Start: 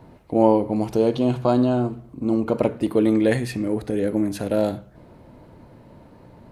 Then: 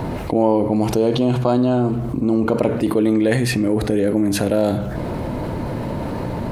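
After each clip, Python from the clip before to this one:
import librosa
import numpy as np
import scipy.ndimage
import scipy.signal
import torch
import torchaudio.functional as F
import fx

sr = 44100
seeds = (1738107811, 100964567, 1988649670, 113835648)

y = fx.env_flatten(x, sr, amount_pct=70)
y = y * librosa.db_to_amplitude(-1.5)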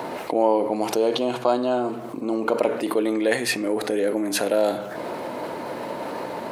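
y = scipy.signal.sosfilt(scipy.signal.butter(2, 440.0, 'highpass', fs=sr, output='sos'), x)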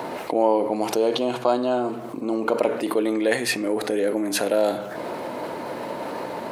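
y = x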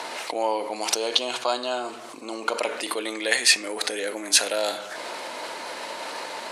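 y = fx.weighting(x, sr, curve='ITU-R 468')
y = y * librosa.db_to_amplitude(-1.5)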